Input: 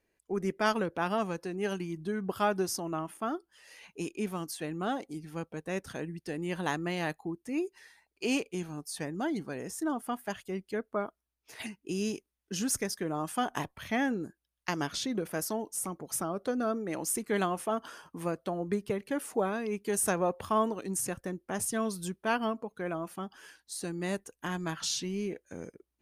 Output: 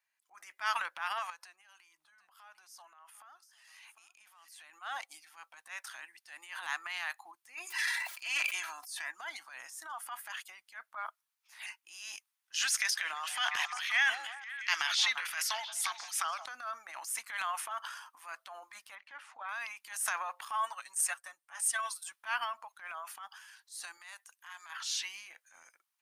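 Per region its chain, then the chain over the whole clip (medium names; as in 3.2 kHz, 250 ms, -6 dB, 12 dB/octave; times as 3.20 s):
1.30–4.70 s: compression, threshold -46 dBFS + delay 749 ms -15.5 dB
7.54–9.12 s: dynamic bell 1.8 kHz, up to +5 dB, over -48 dBFS, Q 1.4 + comb 3 ms, depth 56% + decay stretcher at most 39 dB/s
12.54–16.46 s: frequency weighting D + repeats whose band climbs or falls 173 ms, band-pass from 590 Hz, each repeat 0.7 oct, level -8 dB
18.95–19.49 s: low-pass 3.1 kHz + upward expansion, over -37 dBFS
20.48–22.12 s: peaking EQ 8.6 kHz +10.5 dB 0.22 oct + comb 7.1 ms, depth 74% + upward expansion, over -39 dBFS
23.97–24.70 s: high-pass 850 Hz 6 dB/octave + compression 2.5:1, threshold -41 dBFS
whole clip: inverse Chebyshev high-pass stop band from 450 Hz, stop band 40 dB; dynamic bell 1.9 kHz, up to +5 dB, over -47 dBFS, Q 0.83; transient shaper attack -8 dB, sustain +8 dB; trim -2.5 dB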